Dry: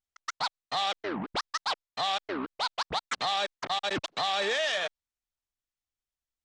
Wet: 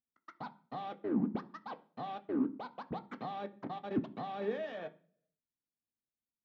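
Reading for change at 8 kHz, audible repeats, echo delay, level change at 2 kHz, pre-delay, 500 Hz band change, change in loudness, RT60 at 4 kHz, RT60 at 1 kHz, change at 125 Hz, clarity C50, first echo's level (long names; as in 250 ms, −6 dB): below −35 dB, no echo audible, no echo audible, −18.0 dB, 3 ms, −5.5 dB, −8.5 dB, 0.55 s, 0.40 s, +2.0 dB, 18.5 dB, no echo audible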